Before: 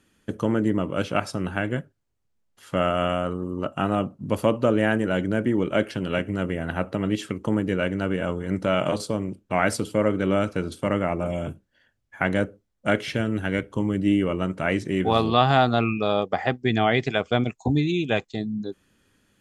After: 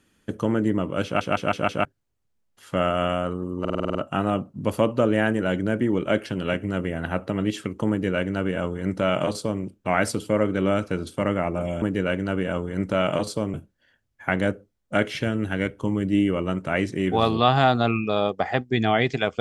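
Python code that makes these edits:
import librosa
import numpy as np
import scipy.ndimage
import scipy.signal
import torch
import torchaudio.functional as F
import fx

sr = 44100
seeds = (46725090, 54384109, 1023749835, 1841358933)

y = fx.edit(x, sr, fx.stutter_over(start_s=1.05, slice_s=0.16, count=5),
    fx.stutter(start_s=3.6, slice_s=0.05, count=8),
    fx.duplicate(start_s=7.55, length_s=1.72, to_s=11.47), tone=tone)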